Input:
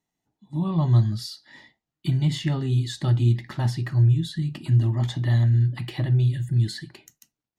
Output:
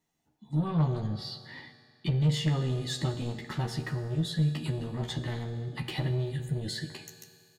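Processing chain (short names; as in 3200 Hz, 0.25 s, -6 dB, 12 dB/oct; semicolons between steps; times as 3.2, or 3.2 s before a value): 1.07–2.21 EQ curve 2300 Hz 0 dB, 4500 Hz -4 dB, 6400 Hz -17 dB; in parallel at 0 dB: compressor, threshold -33 dBFS, peak gain reduction 18 dB; on the sum: soft clip -20 dBFS, distortion -11 dB; doubler 13 ms -4 dB; reverb RT60 2.3 s, pre-delay 3 ms, DRR 8.5 dB; gain -4.5 dB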